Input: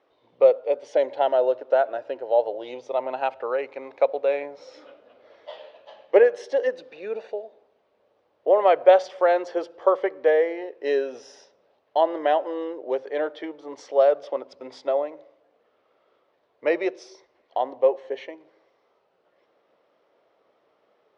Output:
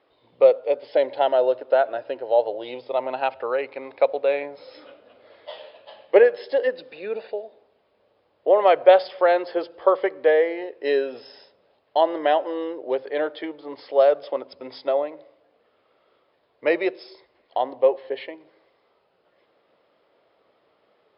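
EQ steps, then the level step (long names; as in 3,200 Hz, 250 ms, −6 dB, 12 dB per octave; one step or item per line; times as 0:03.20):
linear-phase brick-wall low-pass 5,300 Hz
low-shelf EQ 170 Hz +9 dB
high-shelf EQ 2,100 Hz +7 dB
0.0 dB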